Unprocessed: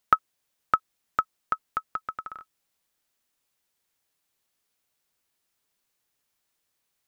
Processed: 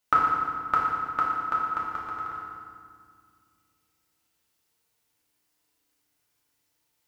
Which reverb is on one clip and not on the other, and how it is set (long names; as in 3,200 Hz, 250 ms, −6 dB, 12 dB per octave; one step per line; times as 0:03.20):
feedback delay network reverb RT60 2 s, low-frequency decay 1.55×, high-frequency decay 0.8×, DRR −6.5 dB
level −4 dB